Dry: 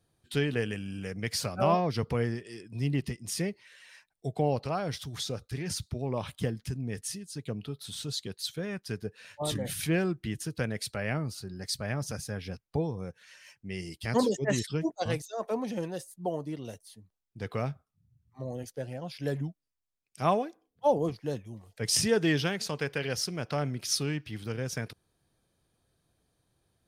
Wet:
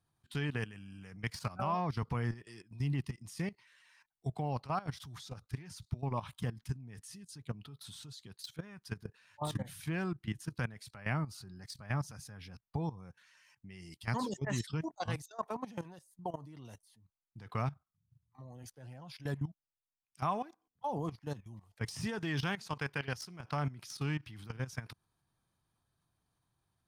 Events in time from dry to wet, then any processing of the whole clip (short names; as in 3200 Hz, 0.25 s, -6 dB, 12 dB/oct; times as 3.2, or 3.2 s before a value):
15.83–16.25 compressor 8:1, threshold -39 dBFS
whole clip: level quantiser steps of 16 dB; graphic EQ 125/500/1000 Hz +4/-8/+9 dB; de-esser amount 85%; gain -2.5 dB